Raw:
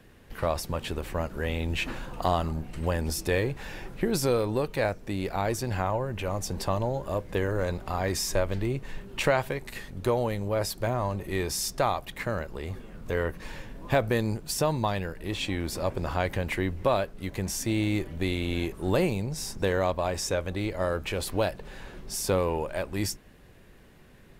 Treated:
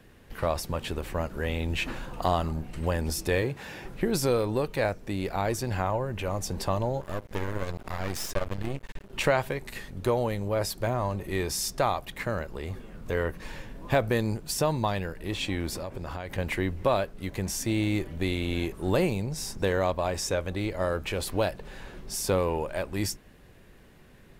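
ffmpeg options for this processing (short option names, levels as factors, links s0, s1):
-filter_complex "[0:a]asettb=1/sr,asplit=3[s0][s1][s2];[s0]atrim=end=3.424[s3];[s1]atrim=start=3.42:end=3.85,asetpts=PTS-STARTPTS,afade=t=in:d=0.004:c=qsin,afade=t=out:st=0.426:d=0.004:c=qsin,highpass=95[s4];[s2]atrim=start=3.846[s5];[s3][s4]acrossfade=d=0.004:c1=hsin:c2=qsin[s6];[s6][s5]acrossfade=d=0.004:c1=qsin:c2=hsin,asettb=1/sr,asplit=3[s7][s8][s9];[s7]atrim=end=7.014[s10];[s8]atrim=start=7.01:end=9.13,asetpts=PTS-STARTPTS,afade=t=in:d=0.004:c=qsin,afade=t=out:st=2.116:d=0.004:c=qsin,aeval=exprs='max(val(0),0)':c=same[s11];[s9]atrim=start=9.126[s12];[s10][s11]acrossfade=d=0.004:c1=hsin:c2=qsin[s13];[s13][s12]acrossfade=d=0.004:c1=qsin:c2=hsin,asettb=1/sr,asplit=3[s14][s15][s16];[s14]atrim=end=15.764[s17];[s15]atrim=start=15.76:end=16.38,asetpts=PTS-STARTPTS,afade=t=in:d=0.004:c=qsin,afade=t=out:st=0.616:d=0.004:c=qsin,acompressor=threshold=0.0282:ratio=10:attack=3.2:release=140:knee=1:detection=peak[s18];[s16]atrim=start=16.376[s19];[s17][s18]acrossfade=d=0.004:c1=hsin:c2=qsin[s20];[s20][s19]acrossfade=d=0.004:c1=qsin:c2=hsin"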